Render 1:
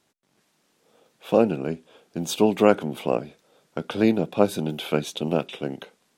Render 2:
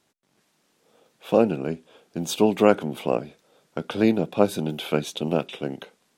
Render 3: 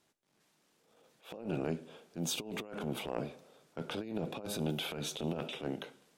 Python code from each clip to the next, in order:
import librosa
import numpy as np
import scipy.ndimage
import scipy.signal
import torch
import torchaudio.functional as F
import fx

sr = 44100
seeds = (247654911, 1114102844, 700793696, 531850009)

y1 = x
y2 = fx.rev_double_slope(y1, sr, seeds[0], early_s=0.62, late_s=2.2, knee_db=-24, drr_db=16.0)
y2 = fx.over_compress(y2, sr, threshold_db=-25.0, ratio=-0.5)
y2 = fx.transient(y2, sr, attack_db=-10, sustain_db=3)
y2 = y2 * 10.0 ** (-9.0 / 20.0)